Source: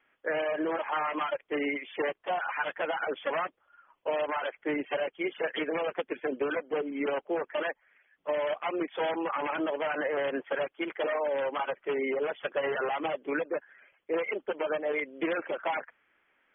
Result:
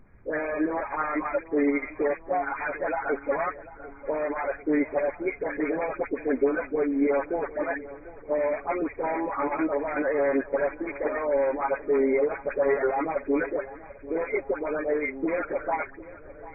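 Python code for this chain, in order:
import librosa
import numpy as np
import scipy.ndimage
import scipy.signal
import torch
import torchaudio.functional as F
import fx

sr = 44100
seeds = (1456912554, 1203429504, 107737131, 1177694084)

y = scipy.signal.sosfilt(scipy.signal.butter(4, 180.0, 'highpass', fs=sr, output='sos'), x)
y = fx.low_shelf(y, sr, hz=400.0, db=9.5)
y = y + 0.5 * np.pad(y, (int(7.2 * sr / 1000.0), 0))[:len(y)]
y = fx.dispersion(y, sr, late='highs', ms=79.0, hz=1000.0)
y = fx.dmg_noise_colour(y, sr, seeds[0], colour='brown', level_db=-51.0)
y = fx.brickwall_lowpass(y, sr, high_hz=2500.0)
y = fx.echo_feedback(y, sr, ms=744, feedback_pct=57, wet_db=-17.5)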